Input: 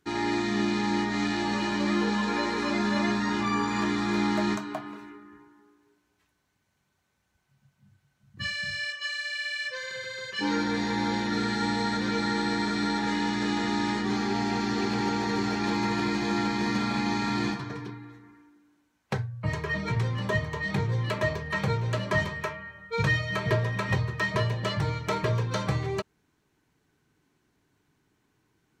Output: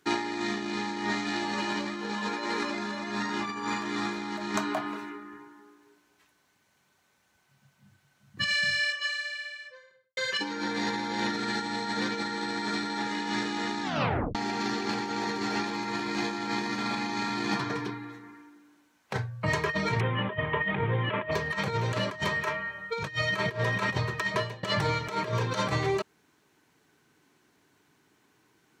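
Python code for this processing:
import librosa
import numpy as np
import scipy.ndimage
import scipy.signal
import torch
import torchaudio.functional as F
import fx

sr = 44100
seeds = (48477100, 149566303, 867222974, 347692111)

y = fx.studio_fade_out(x, sr, start_s=8.46, length_s=1.71)
y = fx.steep_lowpass(y, sr, hz=3300.0, slope=72, at=(19.99, 21.31), fade=0.02)
y = fx.edit(y, sr, fx.tape_stop(start_s=13.83, length_s=0.52),
    fx.fade_out_to(start_s=23.96, length_s=0.67, floor_db=-18.5), tone=tone)
y = fx.highpass(y, sr, hz=310.0, slope=6)
y = fx.over_compress(y, sr, threshold_db=-33.0, ratio=-0.5)
y = y * 10.0 ** (4.0 / 20.0)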